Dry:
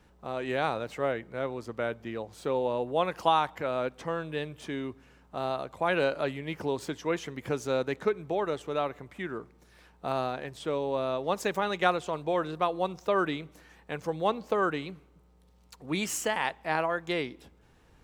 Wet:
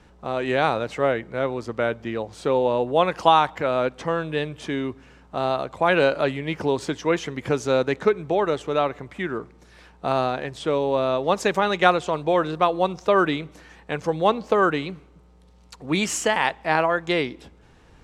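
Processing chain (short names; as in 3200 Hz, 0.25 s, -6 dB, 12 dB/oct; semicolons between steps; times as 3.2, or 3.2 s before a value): LPF 8500 Hz 12 dB/oct; gain +8 dB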